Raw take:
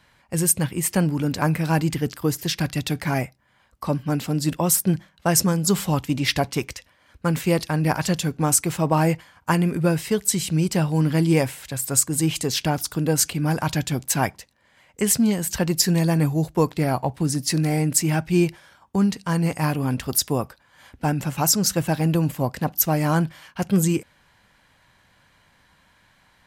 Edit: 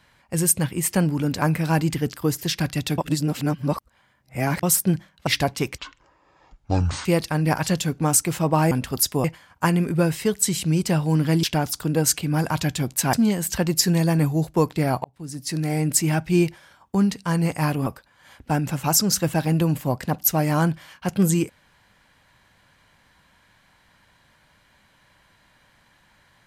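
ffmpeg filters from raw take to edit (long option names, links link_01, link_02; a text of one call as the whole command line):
ffmpeg -i in.wav -filter_complex "[0:a]asplit=12[link_01][link_02][link_03][link_04][link_05][link_06][link_07][link_08][link_09][link_10][link_11][link_12];[link_01]atrim=end=2.982[link_13];[link_02]atrim=start=2.978:end=4.632,asetpts=PTS-STARTPTS,areverse[link_14];[link_03]atrim=start=4.628:end=5.272[link_15];[link_04]atrim=start=6.228:end=6.744[link_16];[link_05]atrim=start=6.74:end=7.44,asetpts=PTS-STARTPTS,asetrate=24255,aresample=44100,atrim=end_sample=56127,asetpts=PTS-STARTPTS[link_17];[link_06]atrim=start=7.436:end=9.102[link_18];[link_07]atrim=start=19.868:end=20.402[link_19];[link_08]atrim=start=9.098:end=11.292[link_20];[link_09]atrim=start=12.548:end=14.252[link_21];[link_10]atrim=start=15.138:end=17.05,asetpts=PTS-STARTPTS,afade=type=out:start_time=1.908:duration=0.004:curve=hsin[link_22];[link_11]atrim=start=17.05:end=19.872,asetpts=PTS-STARTPTS,afade=type=in:duration=0.87[link_23];[link_12]atrim=start=20.398[link_24];[link_13][link_14]acrossfade=duration=0.004:curve1=hsin:curve2=hsin[link_25];[link_25][link_15]acrossfade=duration=0.004:curve1=hsin:curve2=hsin[link_26];[link_26][link_16]acrossfade=duration=0.004:curve1=hsin:curve2=hsin[link_27];[link_27][link_17]acrossfade=duration=0.004:curve1=hsin:curve2=hsin[link_28];[link_28][link_18]acrossfade=duration=0.004:curve1=hsin:curve2=hsin[link_29];[link_29][link_19]acrossfade=duration=0.004:curve1=hsin:curve2=hsin[link_30];[link_30][link_20]acrossfade=duration=0.004:curve1=hsin:curve2=hsin[link_31];[link_31][link_21]acrossfade=duration=0.004:curve1=hsin:curve2=hsin[link_32];[link_22][link_23]concat=n=2:v=0:a=1[link_33];[link_32][link_33]acrossfade=duration=0.004:curve1=hsin:curve2=hsin[link_34];[link_34][link_24]acrossfade=duration=0.004:curve1=hsin:curve2=hsin" out.wav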